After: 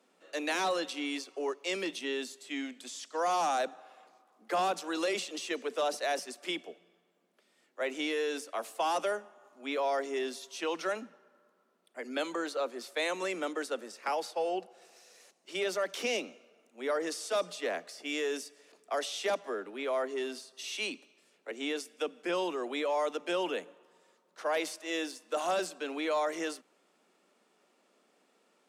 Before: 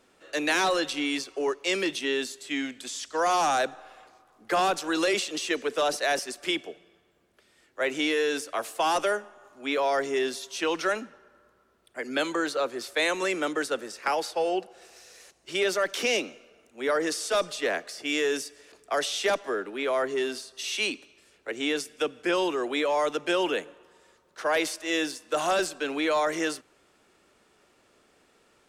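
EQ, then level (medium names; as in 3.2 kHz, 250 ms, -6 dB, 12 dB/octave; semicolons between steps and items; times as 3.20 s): rippled Chebyshev high-pass 170 Hz, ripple 3 dB; peaking EQ 1.6 kHz -3 dB 0.4 oct; -4.5 dB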